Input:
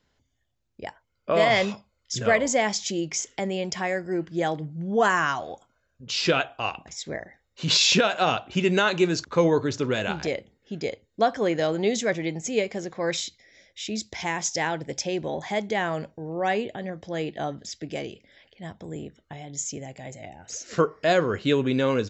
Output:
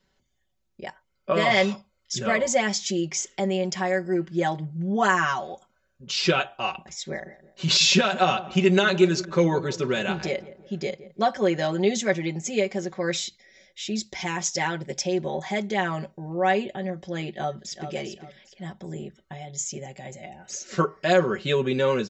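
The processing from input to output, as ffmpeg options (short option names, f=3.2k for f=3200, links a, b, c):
-filter_complex "[0:a]asettb=1/sr,asplit=3[a][b][c];[a]atrim=end=6.964[d];[b]atrim=start=6.96:end=11.22,asetpts=PTS-STARTPTS,afade=t=in:d=0.004:c=qsin,afade=t=out:st=4.256:d=0.004:c=qsin,asplit=2[e][f];[f]adelay=169,lowpass=f=1.1k:p=1,volume=-15.5dB,asplit=2[g][h];[h]adelay=169,lowpass=f=1.1k:p=1,volume=0.47,asplit=2[i][j];[j]adelay=169,lowpass=f=1.1k:p=1,volume=0.47,asplit=2[k][l];[l]adelay=169,lowpass=f=1.1k:p=1,volume=0.47[m];[e][g][i][k][m]amix=inputs=5:normalize=0,atrim=end_sample=187866[n];[c]atrim=start=11.216[o];[d][n]acrossfade=d=0.004:c1=hsin:c2=qsin[p];[p][o]acrossfade=d=0.004:c1=qsin:c2=hsin,asplit=2[q][r];[r]afade=t=in:st=17.31:d=0.01,afade=t=out:st=17.91:d=0.01,aecho=0:1:400|800|1200:0.354813|0.106444|0.0319332[s];[q][s]amix=inputs=2:normalize=0,aecho=1:1:5.3:0.92,volume=-2dB"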